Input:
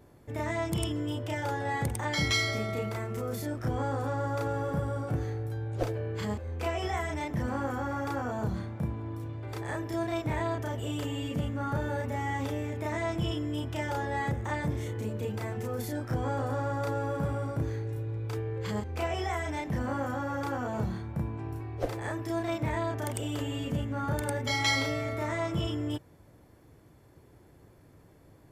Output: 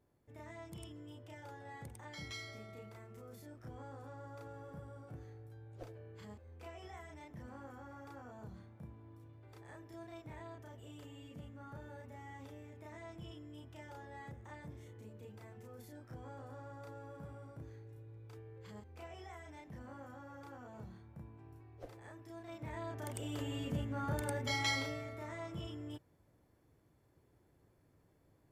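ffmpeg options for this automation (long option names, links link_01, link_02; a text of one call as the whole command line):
ffmpeg -i in.wav -af "volume=-6.5dB,afade=type=in:start_time=22.43:duration=1.11:silence=0.237137,afade=type=out:start_time=24.53:duration=0.59:silence=0.446684" out.wav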